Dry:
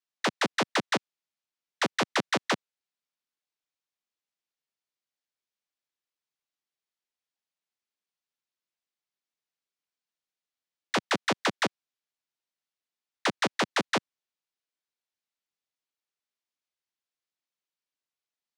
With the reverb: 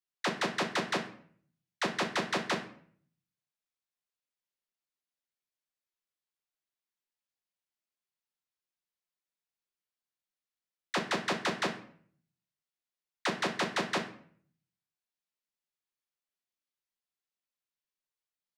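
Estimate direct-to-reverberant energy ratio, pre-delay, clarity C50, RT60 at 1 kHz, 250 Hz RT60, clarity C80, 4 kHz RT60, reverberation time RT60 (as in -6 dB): 3.0 dB, 6 ms, 10.0 dB, 0.55 s, 0.70 s, 13.5 dB, 0.40 s, 0.55 s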